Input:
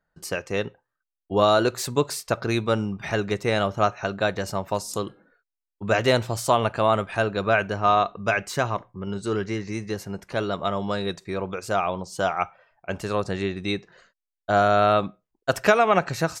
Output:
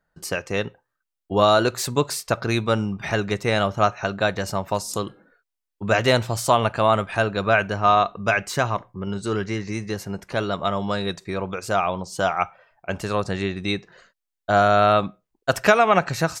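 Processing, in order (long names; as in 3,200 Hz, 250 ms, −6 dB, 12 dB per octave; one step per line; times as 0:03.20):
dynamic equaliser 390 Hz, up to −3 dB, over −33 dBFS, Q 1.2
level +3 dB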